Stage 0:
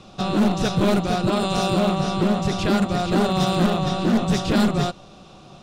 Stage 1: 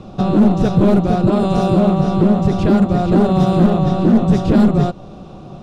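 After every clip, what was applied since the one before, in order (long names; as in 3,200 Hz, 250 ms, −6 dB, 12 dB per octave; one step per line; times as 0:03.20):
tilt shelving filter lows +8.5 dB, about 1,200 Hz
in parallel at +1 dB: downward compressor, threshold −21 dBFS, peak gain reduction 13 dB
on the sum: level −2.5 dB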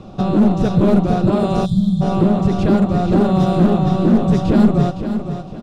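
repeating echo 512 ms, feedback 33%, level −9.5 dB
gain on a spectral selection 0:01.66–0:02.01, 220–3,100 Hz −27 dB
level −1.5 dB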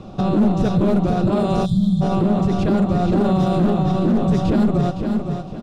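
brickwall limiter −10 dBFS, peak gain reduction 6.5 dB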